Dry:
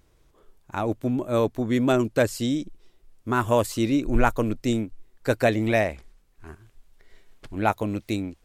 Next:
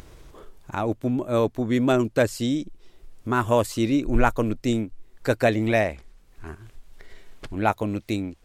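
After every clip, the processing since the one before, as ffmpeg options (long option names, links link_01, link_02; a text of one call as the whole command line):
ffmpeg -i in.wav -filter_complex "[0:a]highshelf=frequency=9800:gain=-4,asplit=2[link_01][link_02];[link_02]acompressor=mode=upward:threshold=-27dB:ratio=2.5,volume=3dB[link_03];[link_01][link_03]amix=inputs=2:normalize=0,volume=-7dB" out.wav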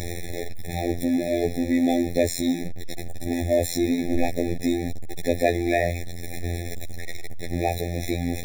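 ffmpeg -i in.wav -af "aeval=exprs='val(0)+0.5*0.1*sgn(val(0))':channel_layout=same,afftfilt=real='hypot(re,im)*cos(PI*b)':imag='0':win_size=2048:overlap=0.75,afftfilt=real='re*eq(mod(floor(b*sr/1024/850),2),0)':imag='im*eq(mod(floor(b*sr/1024/850),2),0)':win_size=1024:overlap=0.75" out.wav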